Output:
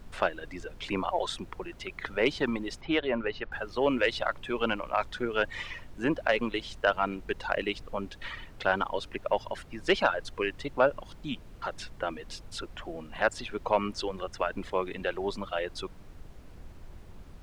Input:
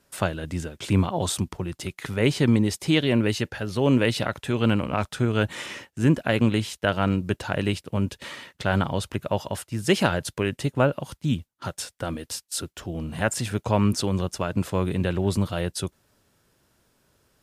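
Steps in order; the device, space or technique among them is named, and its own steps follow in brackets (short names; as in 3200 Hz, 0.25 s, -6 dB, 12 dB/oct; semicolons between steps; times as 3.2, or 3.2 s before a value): reverb removal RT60 1.9 s; aircraft cabin announcement (BPF 450–3100 Hz; soft clip -12 dBFS, distortion -21 dB; brown noise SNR 13 dB); 2.81–3.52 air absorption 260 m; gain +1.5 dB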